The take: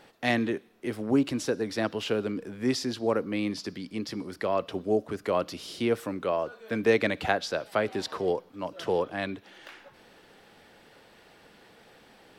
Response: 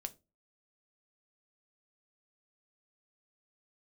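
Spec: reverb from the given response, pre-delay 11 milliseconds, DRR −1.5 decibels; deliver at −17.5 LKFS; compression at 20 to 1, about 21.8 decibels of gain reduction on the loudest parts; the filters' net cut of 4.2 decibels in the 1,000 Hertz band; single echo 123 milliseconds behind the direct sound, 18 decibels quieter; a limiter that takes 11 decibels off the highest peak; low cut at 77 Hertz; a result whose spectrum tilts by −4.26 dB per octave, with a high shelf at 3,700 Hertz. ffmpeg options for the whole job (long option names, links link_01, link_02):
-filter_complex "[0:a]highpass=77,equalizer=frequency=1000:width_type=o:gain=-5.5,highshelf=frequency=3700:gain=-8.5,acompressor=threshold=-40dB:ratio=20,alimiter=level_in=14dB:limit=-24dB:level=0:latency=1,volume=-14dB,aecho=1:1:123:0.126,asplit=2[link_01][link_02];[1:a]atrim=start_sample=2205,adelay=11[link_03];[link_02][link_03]afir=irnorm=-1:irlink=0,volume=4dB[link_04];[link_01][link_04]amix=inputs=2:normalize=0,volume=27.5dB"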